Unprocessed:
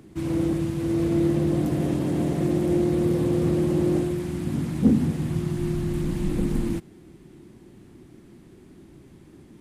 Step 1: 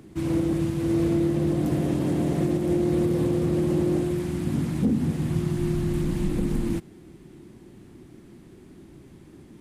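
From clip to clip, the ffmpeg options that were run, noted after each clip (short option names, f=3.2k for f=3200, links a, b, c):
-af "alimiter=limit=-15.5dB:level=0:latency=1:release=218,volume=1dB"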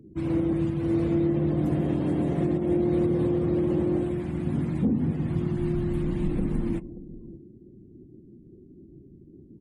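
-af "aecho=1:1:145|581:0.15|0.158,afftdn=nr=35:nf=-47,volume=-1.5dB"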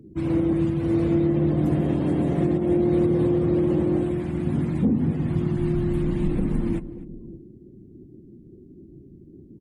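-filter_complex "[0:a]asplit=2[a][b];[b]adelay=250.7,volume=-19dB,highshelf=f=4k:g=-5.64[c];[a][c]amix=inputs=2:normalize=0,volume=3dB"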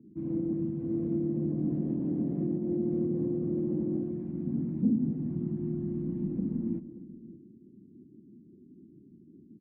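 -af "bandpass=f=230:t=q:w=2.3:csg=0,volume=-3.5dB"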